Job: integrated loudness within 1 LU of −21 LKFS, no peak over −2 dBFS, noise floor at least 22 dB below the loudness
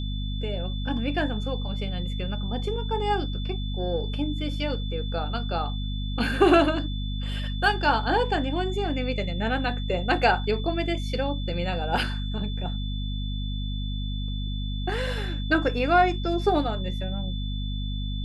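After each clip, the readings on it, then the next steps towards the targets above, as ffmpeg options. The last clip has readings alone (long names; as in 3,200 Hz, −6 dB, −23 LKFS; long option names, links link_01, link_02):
mains hum 50 Hz; hum harmonics up to 250 Hz; level of the hum −27 dBFS; interfering tone 3,500 Hz; level of the tone −39 dBFS; integrated loudness −27.0 LKFS; sample peak −6.0 dBFS; target loudness −21.0 LKFS
→ -af "bandreject=frequency=50:width_type=h:width=6,bandreject=frequency=100:width_type=h:width=6,bandreject=frequency=150:width_type=h:width=6,bandreject=frequency=200:width_type=h:width=6,bandreject=frequency=250:width_type=h:width=6"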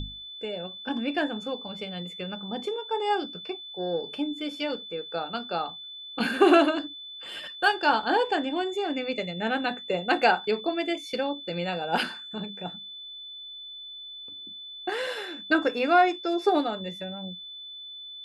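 mains hum none found; interfering tone 3,500 Hz; level of the tone −39 dBFS
→ -af "bandreject=frequency=3500:width=30"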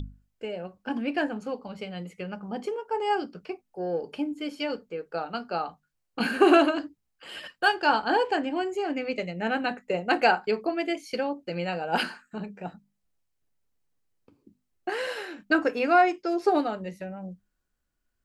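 interfering tone none found; integrated loudness −27.5 LKFS; sample peak −6.5 dBFS; target loudness −21.0 LKFS
→ -af "volume=6.5dB,alimiter=limit=-2dB:level=0:latency=1"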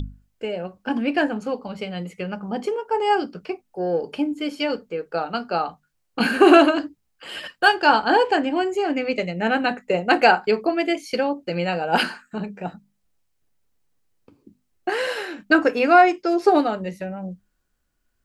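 integrated loudness −21.0 LKFS; sample peak −2.0 dBFS; background noise floor −71 dBFS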